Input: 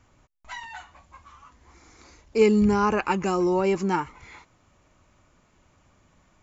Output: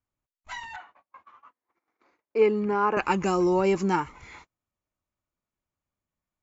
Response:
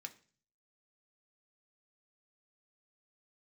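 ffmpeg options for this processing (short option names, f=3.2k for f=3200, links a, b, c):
-filter_complex "[0:a]agate=range=-29dB:threshold=-49dB:ratio=16:detection=peak,asettb=1/sr,asplit=3[a][b][c];[a]atrim=end=0.764[d];[b]atrim=start=0.76:end=2.97,asetpts=PTS-STARTPTS,afade=t=in:d=0.004:c=qsin,afade=t=out:st=2.206:d=0.004:c=qsin,highpass=350,lowpass=2.1k[e];[c]atrim=start=2.966[f];[d][e]acrossfade=d=0.004:c1=hsin:c2=qsin[g];[g][f]acrossfade=d=0.004:c1=qsin:c2=hsin"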